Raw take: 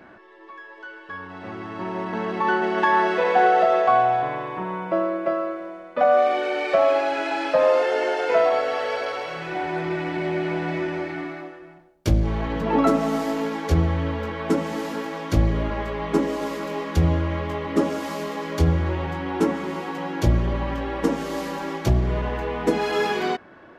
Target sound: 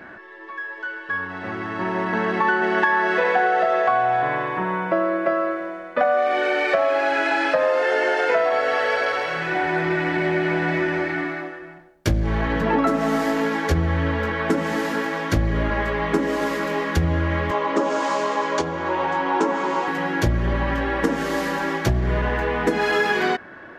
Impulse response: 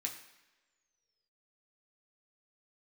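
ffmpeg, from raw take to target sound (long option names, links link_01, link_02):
-filter_complex "[0:a]equalizer=frequency=1700:width=2.5:gain=8,acompressor=threshold=-20dB:ratio=6,asettb=1/sr,asplit=3[link_01][link_02][link_03];[link_01]atrim=end=17.514[link_04];[link_02]atrim=start=17.51:end=19.88,asetpts=PTS-STARTPTS,afade=type=in:duration=0.004:curve=qsin,afade=type=out:start_time=2.366:duration=0.004:curve=qsin,highpass=280,equalizer=frequency=580:width_type=q:width=4:gain=4,equalizer=frequency=960:width_type=q:width=4:gain=10,equalizer=frequency=1900:width_type=q:width=4:gain=-5,equalizer=frequency=6800:width_type=q:width=4:gain=4,lowpass=frequency=8000:width=0.5412,lowpass=frequency=8000:width=1.3066[link_05];[link_03]atrim=start=19.876[link_06];[link_04][link_05]acrossfade=duration=0.004:curve1=hsin:curve2=qsin[link_07];[link_07][link_06]acrossfade=duration=0.004:curve1=qsin:curve2=hsin,volume=4dB"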